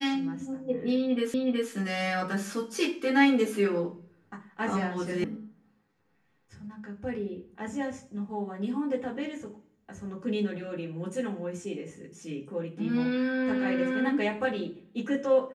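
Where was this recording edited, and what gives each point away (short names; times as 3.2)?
1.34 repeat of the last 0.37 s
5.24 sound cut off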